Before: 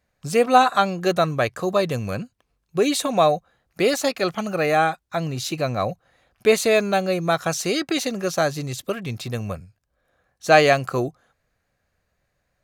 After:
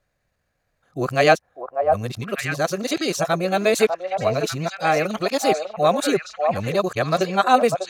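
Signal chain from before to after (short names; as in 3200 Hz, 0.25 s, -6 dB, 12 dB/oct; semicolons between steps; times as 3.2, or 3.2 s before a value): whole clip reversed; tempo 1.6×; delay with a stepping band-pass 0.597 s, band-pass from 730 Hz, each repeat 1.4 oct, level -2 dB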